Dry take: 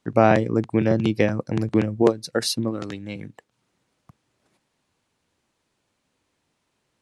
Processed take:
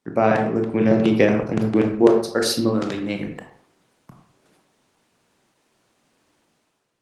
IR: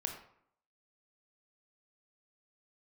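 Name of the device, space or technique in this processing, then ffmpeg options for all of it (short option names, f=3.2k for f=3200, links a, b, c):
far-field microphone of a smart speaker: -filter_complex "[1:a]atrim=start_sample=2205[a];[0:a][a]afir=irnorm=-1:irlink=0,highpass=150,dynaudnorm=f=150:g=7:m=11dB,volume=-1dB" -ar 48000 -c:a libopus -b:a 20k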